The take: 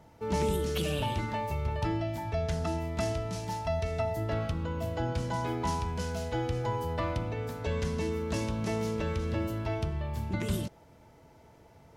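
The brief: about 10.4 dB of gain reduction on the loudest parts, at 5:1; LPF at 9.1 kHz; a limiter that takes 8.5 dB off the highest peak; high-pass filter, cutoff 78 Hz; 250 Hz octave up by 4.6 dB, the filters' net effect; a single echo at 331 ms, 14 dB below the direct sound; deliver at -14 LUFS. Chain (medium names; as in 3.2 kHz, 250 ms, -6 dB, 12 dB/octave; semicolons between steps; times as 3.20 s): high-pass 78 Hz; low-pass 9.1 kHz; peaking EQ 250 Hz +6.5 dB; compression 5:1, threshold -35 dBFS; peak limiter -32 dBFS; delay 331 ms -14 dB; trim +27 dB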